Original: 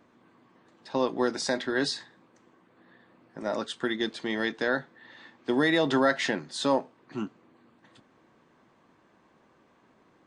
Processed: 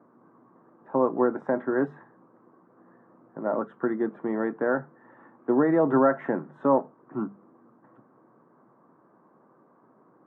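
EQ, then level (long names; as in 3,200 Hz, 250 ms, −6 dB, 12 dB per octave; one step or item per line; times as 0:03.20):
elliptic band-pass filter 130–1,300 Hz, stop band 50 dB
mains-hum notches 50/100/150/200 Hz
+4.0 dB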